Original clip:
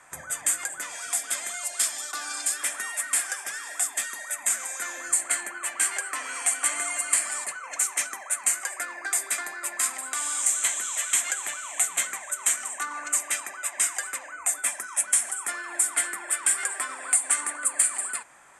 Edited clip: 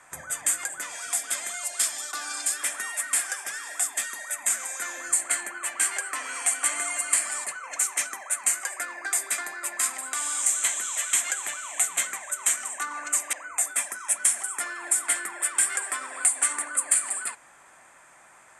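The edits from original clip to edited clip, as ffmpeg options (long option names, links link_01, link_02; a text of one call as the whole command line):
ffmpeg -i in.wav -filter_complex "[0:a]asplit=2[link_01][link_02];[link_01]atrim=end=13.332[link_03];[link_02]atrim=start=14.208[link_04];[link_03][link_04]acrossfade=duration=0.004:curve1=hsin:curve2=hsin" out.wav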